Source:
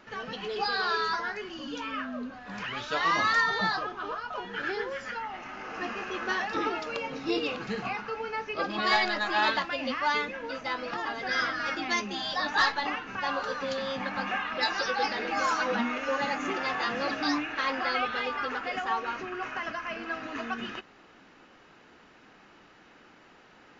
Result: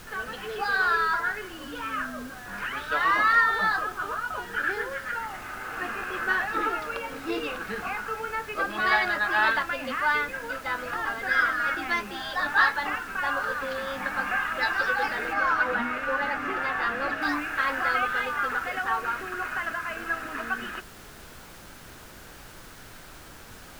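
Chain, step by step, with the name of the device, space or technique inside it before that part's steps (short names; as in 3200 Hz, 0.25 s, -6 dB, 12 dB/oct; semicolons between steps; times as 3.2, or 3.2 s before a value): horn gramophone (BPF 220–3500 Hz; bell 1500 Hz +9.5 dB 0.6 oct; wow and flutter 19 cents; pink noise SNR 18 dB); 15.33–17.22 high shelf 6100 Hz -9 dB; gain -1 dB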